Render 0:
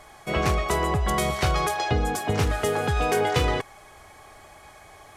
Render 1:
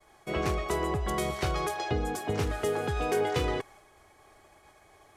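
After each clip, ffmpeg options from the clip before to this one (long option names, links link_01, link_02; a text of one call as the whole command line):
ffmpeg -i in.wav -af "agate=range=-33dB:threshold=-44dB:ratio=3:detection=peak,equalizer=frequency=360:width=1.9:gain=6,volume=-7.5dB" out.wav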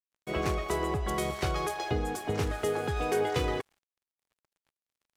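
ffmpeg -i in.wav -af "aeval=exprs='sgn(val(0))*max(abs(val(0))-0.00335,0)':channel_layout=same" out.wav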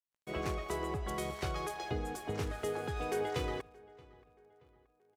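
ffmpeg -i in.wav -filter_complex "[0:a]asplit=2[link_01][link_02];[link_02]adelay=627,lowpass=frequency=2900:poles=1,volume=-22.5dB,asplit=2[link_03][link_04];[link_04]adelay=627,lowpass=frequency=2900:poles=1,volume=0.46,asplit=2[link_05][link_06];[link_06]adelay=627,lowpass=frequency=2900:poles=1,volume=0.46[link_07];[link_01][link_03][link_05][link_07]amix=inputs=4:normalize=0,volume=-6.5dB" out.wav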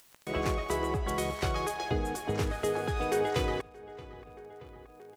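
ffmpeg -i in.wav -af "acompressor=mode=upward:threshold=-43dB:ratio=2.5,volume=6dB" out.wav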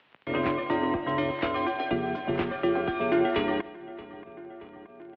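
ffmpeg -i in.wav -af "highpass=frequency=200:width_type=q:width=0.5412,highpass=frequency=200:width_type=q:width=1.307,lowpass=frequency=3300:width_type=q:width=0.5176,lowpass=frequency=3300:width_type=q:width=0.7071,lowpass=frequency=3300:width_type=q:width=1.932,afreqshift=-69,aecho=1:1:150|300|450:0.106|0.0445|0.0187,volume=5dB" out.wav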